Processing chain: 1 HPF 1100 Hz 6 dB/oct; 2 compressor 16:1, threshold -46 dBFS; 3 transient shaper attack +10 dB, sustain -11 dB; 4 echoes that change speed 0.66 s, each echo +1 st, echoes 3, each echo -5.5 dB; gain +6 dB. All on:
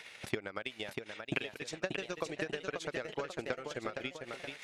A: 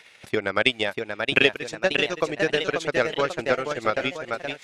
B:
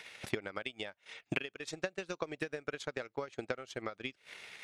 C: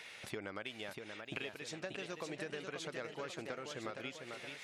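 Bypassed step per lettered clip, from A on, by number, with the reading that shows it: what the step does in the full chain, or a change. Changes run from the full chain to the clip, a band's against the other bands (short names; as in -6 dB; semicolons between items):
2, mean gain reduction 11.0 dB; 4, momentary loudness spread change +2 LU; 3, crest factor change -4.0 dB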